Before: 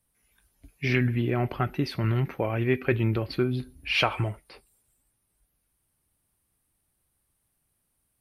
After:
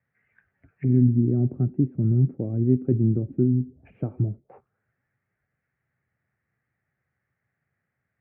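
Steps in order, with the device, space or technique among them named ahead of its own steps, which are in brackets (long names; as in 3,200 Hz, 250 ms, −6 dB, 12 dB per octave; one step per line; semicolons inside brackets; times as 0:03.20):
envelope filter bass rig (envelope-controlled low-pass 280–1,900 Hz down, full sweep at −28.5 dBFS; loudspeaker in its box 83–2,300 Hz, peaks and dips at 130 Hz +6 dB, 300 Hz −7 dB, 1,000 Hz −9 dB)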